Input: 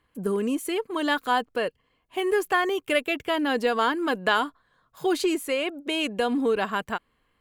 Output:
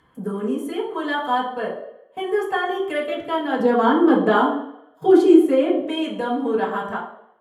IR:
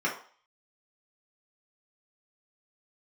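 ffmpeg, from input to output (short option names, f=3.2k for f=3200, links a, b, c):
-filter_complex "[0:a]asettb=1/sr,asplit=3[a][b][c];[a]atrim=end=3.594[d];[b]atrim=start=3.59:end=5.8,asetpts=PTS-STARTPTS,afade=t=in:d=0.004:c=qsin,afade=t=out:st=2.206:d=0.004:c=qsin,equalizer=f=290:w=0.78:g=12[e];[c]atrim=start=5.796[f];[d][e]acrossfade=d=0.004:c1=hsin:c2=qsin[g];[g][f]acrossfade=d=0.004:c1=qsin:c2=hsin,agate=range=-24dB:threshold=-40dB:ratio=16:detection=peak,acompressor=mode=upward:threshold=-33dB:ratio=2.5[h];[1:a]atrim=start_sample=2205,asetrate=26019,aresample=44100[i];[h][i]afir=irnorm=-1:irlink=0,volume=-12dB"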